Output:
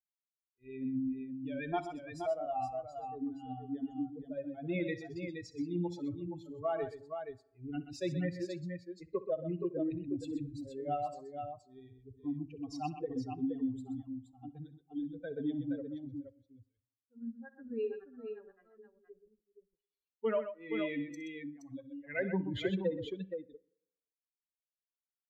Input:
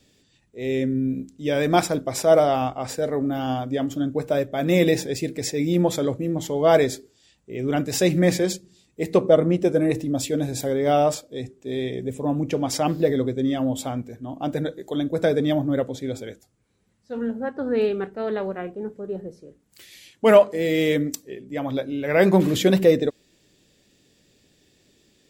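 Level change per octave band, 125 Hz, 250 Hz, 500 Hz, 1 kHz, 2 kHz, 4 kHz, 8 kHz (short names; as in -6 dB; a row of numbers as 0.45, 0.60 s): -16.5 dB, -14.0 dB, -18.5 dB, -14.5 dB, -15.5 dB, -20.0 dB, under -25 dB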